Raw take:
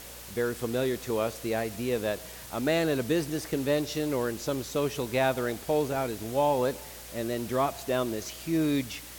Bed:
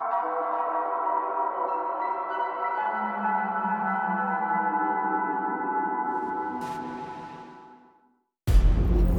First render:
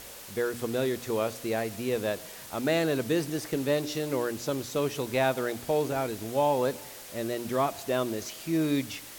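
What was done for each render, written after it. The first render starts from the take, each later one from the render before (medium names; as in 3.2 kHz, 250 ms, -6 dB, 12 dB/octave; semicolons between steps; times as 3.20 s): de-hum 60 Hz, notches 5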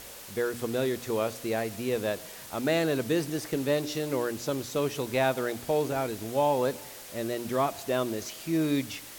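no audible change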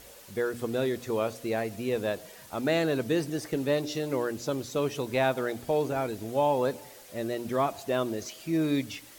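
noise reduction 7 dB, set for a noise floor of -45 dBFS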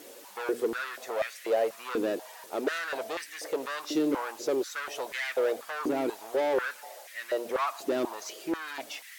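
hard clipper -29.5 dBFS, distortion -7 dB; step-sequenced high-pass 4.1 Hz 310–1900 Hz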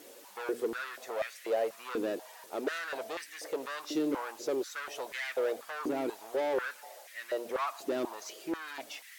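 trim -4 dB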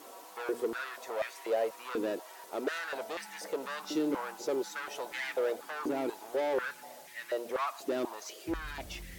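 add bed -26 dB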